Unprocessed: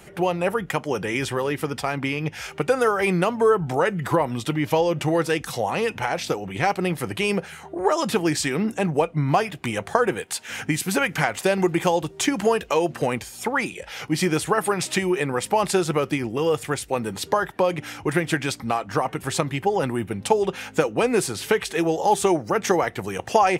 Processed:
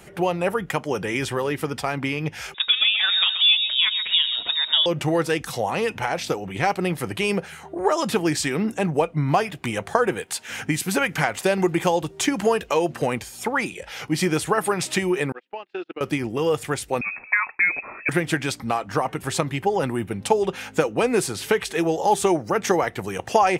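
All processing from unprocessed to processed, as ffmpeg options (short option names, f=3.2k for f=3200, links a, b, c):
-filter_complex "[0:a]asettb=1/sr,asplit=3[a][b][c];[a]atrim=end=2.544[d];[b]atrim=start=2.54:end=4.86,asetpts=PTS-STARTPTS,afade=t=in:d=0.004:c=qsin,afade=t=out:st=2.316:d=0.004:c=qsin,aecho=1:1:130|260|390:0.316|0.0917|0.0266,atrim=end_sample=102312,lowpass=f=3.3k:t=q:w=0.5098,lowpass=f=3.3k:t=q:w=0.6013,lowpass=f=3.3k:t=q:w=0.9,lowpass=f=3.3k:t=q:w=2.563,afreqshift=-3900[e];[c]atrim=start=4.856[f];[d][e]acrossfade=d=0.004:c1=hsin:c2=qsin[g];[g][f]acrossfade=d=0.004:c1=qsin:c2=hsin,asettb=1/sr,asplit=3[h][i][j];[h]atrim=end=15.324[k];[i]atrim=start=15.32:end=16.01,asetpts=PTS-STARTPTS,afade=t=in:d=0.004:c=qsin,afade=t=out:st=0.686:d=0.004:c=qsin,highpass=f=270:w=0.5412,highpass=f=270:w=1.3066,equalizer=f=310:t=q:w=4:g=5,equalizer=f=560:t=q:w=4:g=-4,equalizer=f=1k:t=q:w=4:g=-5,equalizer=f=1.6k:t=q:w=4:g=4,equalizer=f=2.7k:t=q:w=4:g=7,lowpass=f=3.8k:w=0.5412,lowpass=f=3.8k:w=1.3066,acompressor=threshold=-30dB:ratio=2.5:attack=3.2:release=140:knee=1:detection=peak,agate=range=-36dB:threshold=-30dB:ratio=16:release=100:detection=peak[l];[j]atrim=start=16.006[m];[k][l]acrossfade=d=0.004:c1=hsin:c2=qsin[n];[n][m]acrossfade=d=0.004:c1=qsin:c2=hsin,asettb=1/sr,asplit=3[o][p][q];[o]atrim=end=17.014[r];[p]atrim=start=17.01:end=18.09,asetpts=PTS-STARTPTS,afade=t=in:d=0.004:c=qsin,afade=t=out:st=1.076:d=0.004:c=qsin,agate=range=-33dB:threshold=-45dB:ratio=3:release=100:detection=peak,lowpass=f=2.3k:t=q:w=0.5098,lowpass=f=2.3k:t=q:w=0.6013,lowpass=f=2.3k:t=q:w=0.9,lowpass=f=2.3k:t=q:w=2.563,afreqshift=-2700[s];[q]atrim=start=18.086[t];[r][s]acrossfade=d=0.004:c1=hsin:c2=qsin[u];[u][t]acrossfade=d=0.004:c1=qsin:c2=hsin"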